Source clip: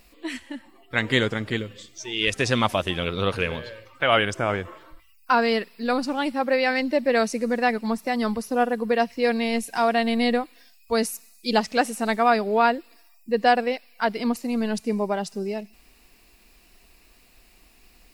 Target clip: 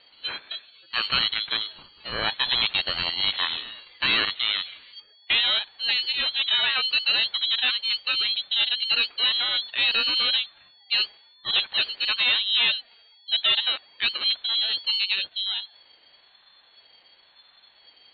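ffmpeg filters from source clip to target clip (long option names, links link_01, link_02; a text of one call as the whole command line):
ffmpeg -i in.wav -af "aresample=16000,volume=17.5dB,asoftclip=hard,volume=-17.5dB,aresample=44100,lowpass=frequency=3300:width_type=q:width=0.5098,lowpass=frequency=3300:width_type=q:width=0.6013,lowpass=frequency=3300:width_type=q:width=0.9,lowpass=frequency=3300:width_type=q:width=2.563,afreqshift=-3900,aeval=exprs='val(0)*sin(2*PI*500*n/s+500*0.3/1*sin(2*PI*1*n/s))':channel_layout=same,volume=3dB" out.wav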